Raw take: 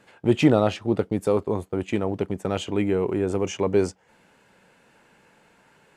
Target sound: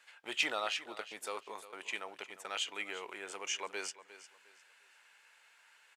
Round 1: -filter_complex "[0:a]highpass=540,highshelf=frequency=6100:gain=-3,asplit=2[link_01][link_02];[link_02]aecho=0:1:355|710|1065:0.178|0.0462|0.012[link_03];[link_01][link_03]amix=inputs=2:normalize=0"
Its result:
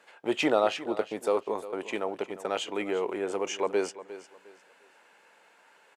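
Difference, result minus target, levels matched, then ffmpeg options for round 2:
500 Hz band +9.0 dB
-filter_complex "[0:a]highpass=1700,highshelf=frequency=6100:gain=-3,asplit=2[link_01][link_02];[link_02]aecho=0:1:355|710|1065:0.178|0.0462|0.012[link_03];[link_01][link_03]amix=inputs=2:normalize=0"

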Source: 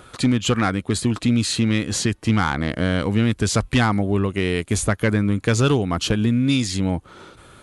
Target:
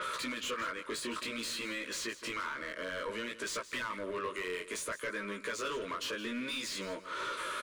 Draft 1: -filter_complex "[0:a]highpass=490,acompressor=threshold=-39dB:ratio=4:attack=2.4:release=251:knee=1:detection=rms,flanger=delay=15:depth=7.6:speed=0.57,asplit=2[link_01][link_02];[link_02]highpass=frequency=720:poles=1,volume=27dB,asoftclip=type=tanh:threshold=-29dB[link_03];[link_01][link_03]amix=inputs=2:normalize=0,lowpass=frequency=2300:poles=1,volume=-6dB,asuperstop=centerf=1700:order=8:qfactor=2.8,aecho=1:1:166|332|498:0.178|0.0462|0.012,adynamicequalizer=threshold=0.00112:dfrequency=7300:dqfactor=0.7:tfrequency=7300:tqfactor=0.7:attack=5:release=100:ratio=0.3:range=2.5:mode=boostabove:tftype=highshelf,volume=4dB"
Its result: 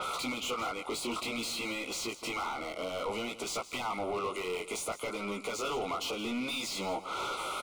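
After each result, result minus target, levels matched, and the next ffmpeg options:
downward compressor: peak gain reduction −7 dB; 2,000 Hz band −4.0 dB
-filter_complex "[0:a]highpass=490,acompressor=threshold=-48.5dB:ratio=4:attack=2.4:release=251:knee=1:detection=rms,flanger=delay=15:depth=7.6:speed=0.57,asplit=2[link_01][link_02];[link_02]highpass=frequency=720:poles=1,volume=27dB,asoftclip=type=tanh:threshold=-29dB[link_03];[link_01][link_03]amix=inputs=2:normalize=0,lowpass=frequency=2300:poles=1,volume=-6dB,asuperstop=centerf=1700:order=8:qfactor=2.8,aecho=1:1:166|332|498:0.178|0.0462|0.012,adynamicequalizer=threshold=0.00112:dfrequency=7300:dqfactor=0.7:tfrequency=7300:tqfactor=0.7:attack=5:release=100:ratio=0.3:range=2.5:mode=boostabove:tftype=highshelf,volume=4dB"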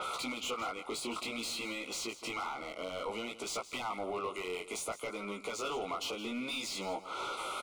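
2,000 Hz band −3.5 dB
-filter_complex "[0:a]highpass=490,acompressor=threshold=-48.5dB:ratio=4:attack=2.4:release=251:knee=1:detection=rms,flanger=delay=15:depth=7.6:speed=0.57,asplit=2[link_01][link_02];[link_02]highpass=frequency=720:poles=1,volume=27dB,asoftclip=type=tanh:threshold=-29dB[link_03];[link_01][link_03]amix=inputs=2:normalize=0,lowpass=frequency=2300:poles=1,volume=-6dB,asuperstop=centerf=770:order=8:qfactor=2.8,aecho=1:1:166|332|498:0.178|0.0462|0.012,adynamicequalizer=threshold=0.00112:dfrequency=7300:dqfactor=0.7:tfrequency=7300:tqfactor=0.7:attack=5:release=100:ratio=0.3:range=2.5:mode=boostabove:tftype=highshelf,volume=4dB"

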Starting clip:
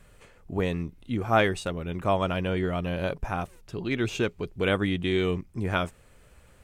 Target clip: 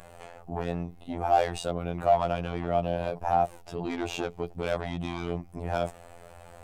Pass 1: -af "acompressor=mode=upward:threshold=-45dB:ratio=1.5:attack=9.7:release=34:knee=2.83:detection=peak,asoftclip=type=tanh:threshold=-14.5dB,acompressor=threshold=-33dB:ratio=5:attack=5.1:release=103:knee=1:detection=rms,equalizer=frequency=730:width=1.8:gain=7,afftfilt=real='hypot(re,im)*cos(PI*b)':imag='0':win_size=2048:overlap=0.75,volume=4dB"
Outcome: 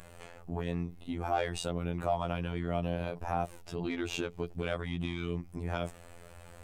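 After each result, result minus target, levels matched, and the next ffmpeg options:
soft clipping: distortion −11 dB; 1,000 Hz band −3.5 dB
-af "acompressor=mode=upward:threshold=-45dB:ratio=1.5:attack=9.7:release=34:knee=2.83:detection=peak,asoftclip=type=tanh:threshold=-25.5dB,acompressor=threshold=-33dB:ratio=5:attack=5.1:release=103:knee=1:detection=rms,equalizer=frequency=730:width=1.8:gain=7,afftfilt=real='hypot(re,im)*cos(PI*b)':imag='0':win_size=2048:overlap=0.75,volume=4dB"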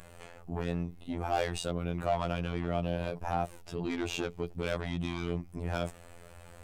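1,000 Hz band −3.5 dB
-af "acompressor=mode=upward:threshold=-45dB:ratio=1.5:attack=9.7:release=34:knee=2.83:detection=peak,asoftclip=type=tanh:threshold=-25.5dB,acompressor=threshold=-33dB:ratio=5:attack=5.1:release=103:knee=1:detection=rms,equalizer=frequency=730:width=1.8:gain=17,afftfilt=real='hypot(re,im)*cos(PI*b)':imag='0':win_size=2048:overlap=0.75,volume=4dB"

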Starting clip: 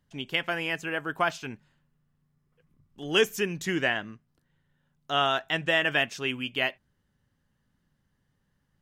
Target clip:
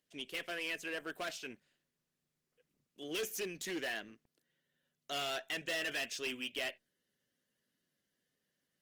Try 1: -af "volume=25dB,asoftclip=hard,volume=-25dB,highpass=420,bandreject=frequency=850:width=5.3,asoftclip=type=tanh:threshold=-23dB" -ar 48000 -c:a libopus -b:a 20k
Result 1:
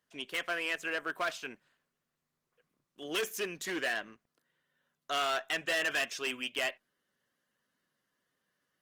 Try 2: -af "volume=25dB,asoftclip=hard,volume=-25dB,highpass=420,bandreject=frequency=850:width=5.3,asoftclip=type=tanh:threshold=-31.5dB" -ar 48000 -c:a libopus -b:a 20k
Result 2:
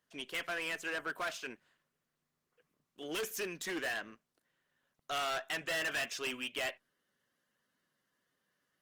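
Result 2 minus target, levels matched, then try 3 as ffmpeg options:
1,000 Hz band +3.5 dB
-af "volume=25dB,asoftclip=hard,volume=-25dB,highpass=420,equalizer=frequency=1100:width_type=o:width=1.2:gain=-12.5,bandreject=frequency=850:width=5.3,asoftclip=type=tanh:threshold=-31.5dB" -ar 48000 -c:a libopus -b:a 20k

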